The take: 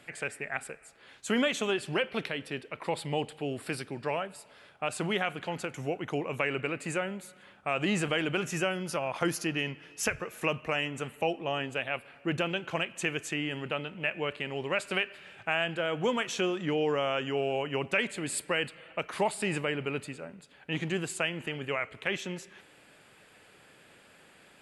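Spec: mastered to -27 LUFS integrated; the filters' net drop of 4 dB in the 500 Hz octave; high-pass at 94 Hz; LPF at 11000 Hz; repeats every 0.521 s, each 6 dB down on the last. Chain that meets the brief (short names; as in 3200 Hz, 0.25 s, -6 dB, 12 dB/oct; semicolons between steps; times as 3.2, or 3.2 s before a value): HPF 94 Hz; LPF 11000 Hz; bell 500 Hz -5 dB; feedback echo 0.521 s, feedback 50%, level -6 dB; gain +5.5 dB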